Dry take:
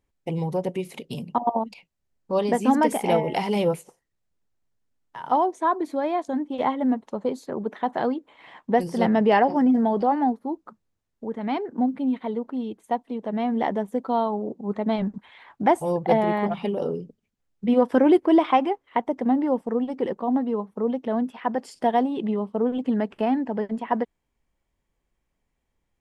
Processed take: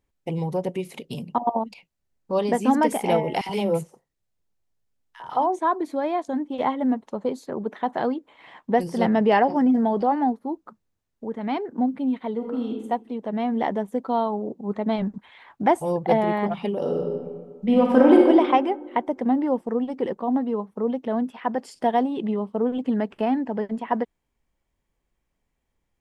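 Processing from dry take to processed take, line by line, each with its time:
3.41–5.59 s: three bands offset in time highs, mids, lows 50/80 ms, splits 250/1400 Hz
12.36–12.84 s: reverb throw, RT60 0.88 s, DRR 0.5 dB
16.78–18.18 s: reverb throw, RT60 1.6 s, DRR -1.5 dB

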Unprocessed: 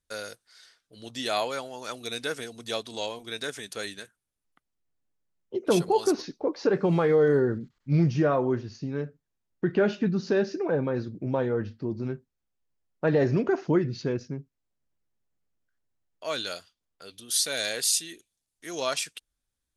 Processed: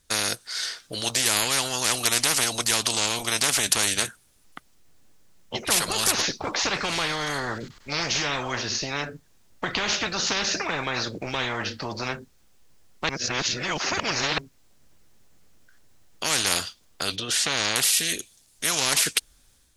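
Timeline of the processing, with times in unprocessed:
13.09–14.38 s: reverse
17.16–17.76 s: distance through air 210 m
whole clip: peaking EQ 5.9 kHz +4 dB 1.7 oct; level rider gain up to 6 dB; spectrum-flattening compressor 10:1; trim +2 dB

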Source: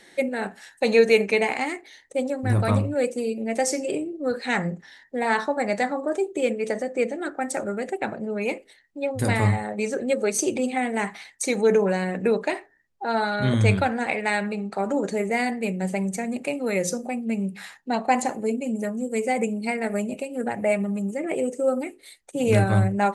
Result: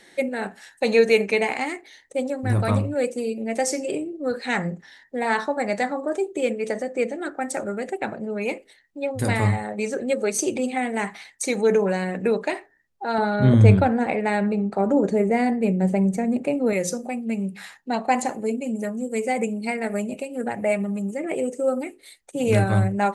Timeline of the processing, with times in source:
13.18–16.73 s: tilt shelf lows +7 dB, about 1.1 kHz

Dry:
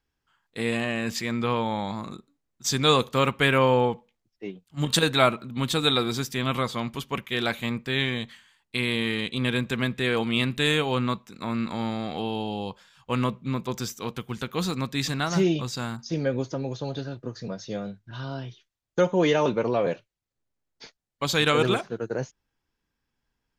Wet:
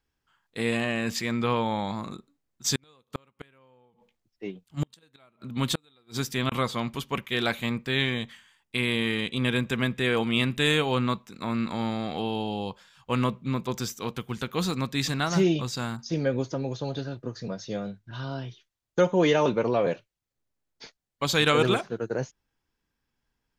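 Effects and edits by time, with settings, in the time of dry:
2.75–6.52 s: inverted gate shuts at -15 dBFS, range -39 dB
8.12–10.70 s: band-stop 4.2 kHz, Q 8.6

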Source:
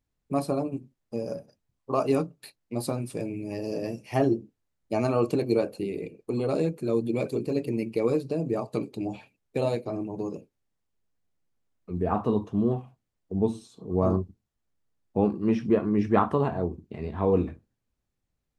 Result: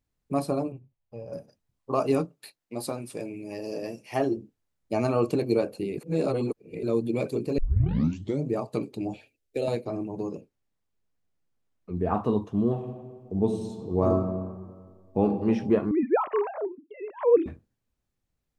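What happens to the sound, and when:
0.72–1.33 s: FFT filter 100 Hz 0 dB, 160 Hz -6 dB, 260 Hz -17 dB, 560 Hz -6 dB, 930 Hz -5 dB, 1.6 kHz -11 dB, 2.7 kHz -7 dB, 7.2 kHz -23 dB
2.25–4.37 s: bass shelf 190 Hz -12 dB
5.98–6.83 s: reverse
7.58 s: tape start 0.91 s
9.14–9.68 s: static phaser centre 420 Hz, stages 4
10.26–12.14 s: treble shelf 8.1 kHz -6 dB
12.67–15.24 s: reverb throw, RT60 1.7 s, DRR 5 dB
15.91–17.46 s: formants replaced by sine waves

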